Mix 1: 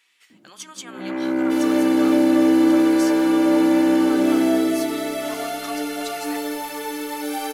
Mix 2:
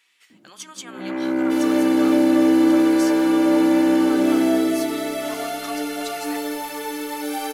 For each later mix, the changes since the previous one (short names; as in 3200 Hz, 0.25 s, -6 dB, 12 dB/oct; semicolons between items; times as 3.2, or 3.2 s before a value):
none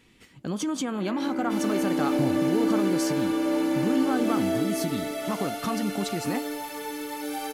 speech: remove HPF 1300 Hz 12 dB/oct; first sound -9.0 dB; second sound -5.5 dB